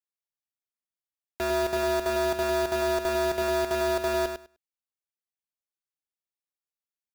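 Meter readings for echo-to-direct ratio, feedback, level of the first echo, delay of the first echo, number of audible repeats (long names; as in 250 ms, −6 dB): −7.0 dB, 15%, −7.0 dB, 101 ms, 2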